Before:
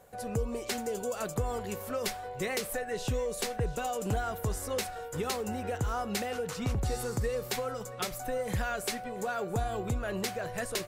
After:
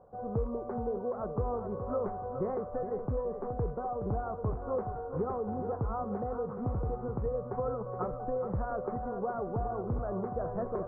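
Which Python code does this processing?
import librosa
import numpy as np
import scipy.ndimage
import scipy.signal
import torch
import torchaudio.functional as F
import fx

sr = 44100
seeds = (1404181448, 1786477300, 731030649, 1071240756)

y = fx.rattle_buzz(x, sr, strikes_db=-33.0, level_db=-26.0)
y = scipy.signal.sosfilt(scipy.signal.ellip(4, 1.0, 60, 1200.0, 'lowpass', fs=sr, output='sos'), y)
y = fx.rider(y, sr, range_db=10, speed_s=0.5)
y = fx.echo_feedback(y, sr, ms=421, feedback_pct=38, wet_db=-9.0)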